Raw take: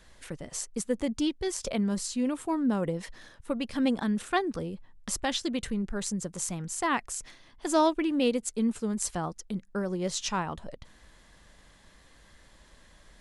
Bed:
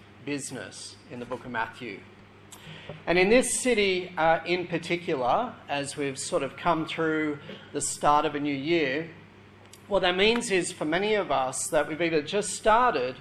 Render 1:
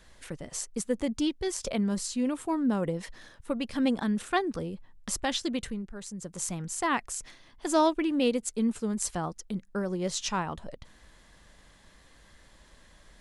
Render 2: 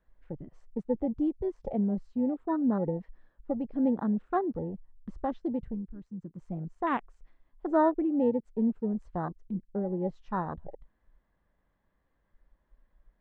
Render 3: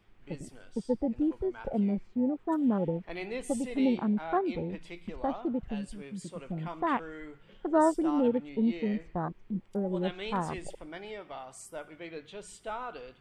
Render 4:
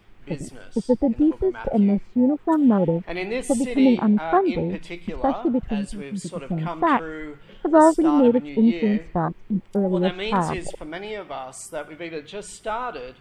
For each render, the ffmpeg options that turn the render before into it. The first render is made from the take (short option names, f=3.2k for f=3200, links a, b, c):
-filter_complex "[0:a]asplit=3[a][b][c];[a]atrim=end=5.88,asetpts=PTS-STARTPTS,afade=t=out:st=5.55:d=0.33:silence=0.375837[d];[b]atrim=start=5.88:end=6.13,asetpts=PTS-STARTPTS,volume=-8.5dB[e];[c]atrim=start=6.13,asetpts=PTS-STARTPTS,afade=t=in:d=0.33:silence=0.375837[f];[d][e][f]concat=n=3:v=0:a=1"
-af "lowpass=1.4k,afwtdn=0.0224"
-filter_complex "[1:a]volume=-17dB[a];[0:a][a]amix=inputs=2:normalize=0"
-af "volume=10dB"